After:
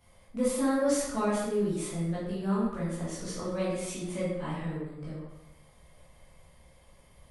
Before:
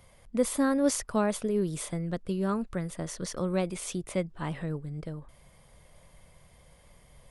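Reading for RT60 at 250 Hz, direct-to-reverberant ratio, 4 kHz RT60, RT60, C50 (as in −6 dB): 0.95 s, −9.0 dB, 0.70 s, 0.95 s, 0.0 dB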